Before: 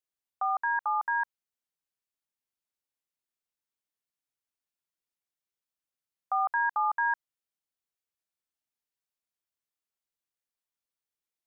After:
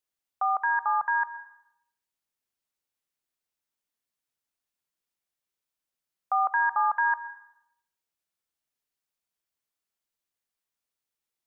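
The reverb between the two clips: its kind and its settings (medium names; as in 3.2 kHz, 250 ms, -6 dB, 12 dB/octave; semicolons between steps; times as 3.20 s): algorithmic reverb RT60 0.77 s, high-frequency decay 0.85×, pre-delay 85 ms, DRR 13 dB; trim +3 dB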